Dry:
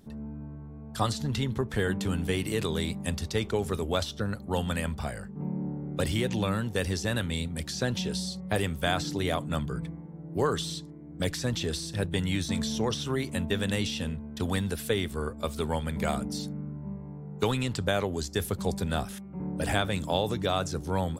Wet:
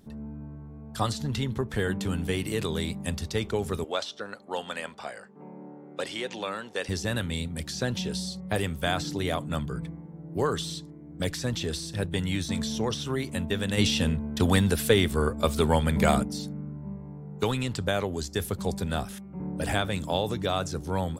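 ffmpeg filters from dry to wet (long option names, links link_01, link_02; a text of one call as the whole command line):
ffmpeg -i in.wav -filter_complex "[0:a]asettb=1/sr,asplit=3[link_01][link_02][link_03];[link_01]atrim=end=3.844[link_04];[link_02]atrim=start=3.84:end=6.89,asetpts=PTS-STARTPTS,afade=type=in:duration=0.004:curve=qsin,afade=type=out:start_time=3.046:duration=0.004:curve=qsin,highpass=430,lowpass=7000[link_05];[link_03]atrim=start=6.886[link_06];[link_04][link_05]acrossfade=duration=0.004:curve1=hsin:curve2=qsin[link_07];[link_07][link_06]acrossfade=duration=0.004:curve1=qsin:curve2=hsin,asplit=3[link_08][link_09][link_10];[link_08]afade=type=out:start_time=13.77:duration=0.02[link_11];[link_09]acontrast=86,afade=type=in:start_time=13.77:duration=0.02,afade=type=out:start_time=16.22:duration=0.02[link_12];[link_10]afade=type=in:start_time=16.22:duration=0.02[link_13];[link_11][link_12][link_13]amix=inputs=3:normalize=0" out.wav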